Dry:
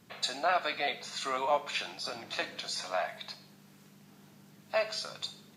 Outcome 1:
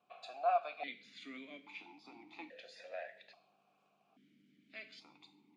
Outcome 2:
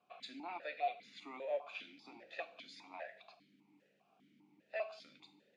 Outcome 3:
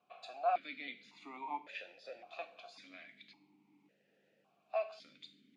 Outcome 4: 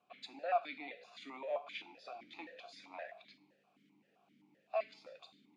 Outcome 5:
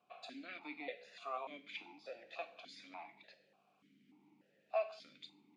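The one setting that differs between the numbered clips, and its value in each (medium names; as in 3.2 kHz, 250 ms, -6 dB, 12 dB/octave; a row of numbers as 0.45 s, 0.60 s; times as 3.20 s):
stepped vowel filter, rate: 1.2 Hz, 5 Hz, 1.8 Hz, 7.7 Hz, 3.4 Hz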